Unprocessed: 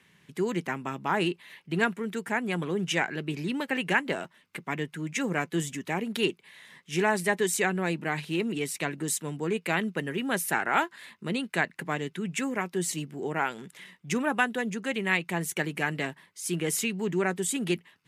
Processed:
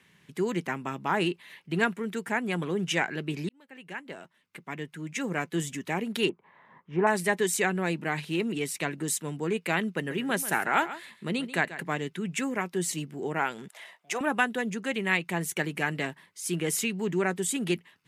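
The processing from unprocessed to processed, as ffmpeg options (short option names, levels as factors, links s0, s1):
-filter_complex "[0:a]asettb=1/sr,asplit=3[s0][s1][s2];[s0]atrim=end=6.294[s3];[s1]atrim=start=6.29:end=7.07,asetpts=PTS-STARTPTS,afade=t=in:d=0.004:c=qsin,afade=t=out:st=0.776:d=0.004:c=qsin,lowpass=f=1000:t=q:w=2.4[s4];[s2]atrim=start=7.066[s5];[s3][s4]acrossfade=d=0.004:c1=hsin:c2=qsin[s6];[s6][s5]acrossfade=d=0.004:c1=qsin:c2=hsin,asettb=1/sr,asplit=3[s7][s8][s9];[s7]atrim=end=9.904[s10];[s8]atrim=start=9.9:end=11.86,asetpts=PTS-STARTPTS,afade=t=in:d=0.004:c=qsin,afade=t=out:st=1.956:d=0.004:c=qsin,aecho=1:1:138:0.2,atrim=end_sample=86436[s11];[s9]atrim=start=11.856[s12];[s10][s11]acrossfade=d=0.004:c1=hsin:c2=qsin[s13];[s13][s12]acrossfade=d=0.004:c1=qsin:c2=hsin,asettb=1/sr,asplit=3[s14][s15][s16];[s14]atrim=end=13.684[s17];[s15]atrim=start=13.68:end=14.21,asetpts=PTS-STARTPTS,afade=t=in:d=0.004:c=qsin,afade=t=out:st=0.526:d=0.004:c=qsin,highpass=f=680:t=q:w=5.9[s18];[s16]atrim=start=14.206[s19];[s17][s18]acrossfade=d=0.004:c1=hsin:c2=qsin[s20];[s20][s19]acrossfade=d=0.004:c1=qsin:c2=hsin,asplit=2[s21][s22];[s21]atrim=end=3.49,asetpts=PTS-STARTPTS,afade=t=out:st=3.486:d=0.004:c=hsin[s23];[s22]atrim=start=3.49,asetpts=PTS-STARTPTS,afade=t=in:d=2.29[s24];[s23][s24]concat=n=2:v=0:a=1"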